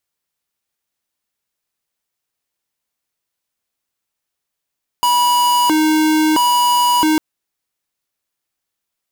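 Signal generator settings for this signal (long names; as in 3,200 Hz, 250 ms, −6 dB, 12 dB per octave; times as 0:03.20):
siren hi-lo 311–974 Hz 0.75 per second square −13.5 dBFS 2.15 s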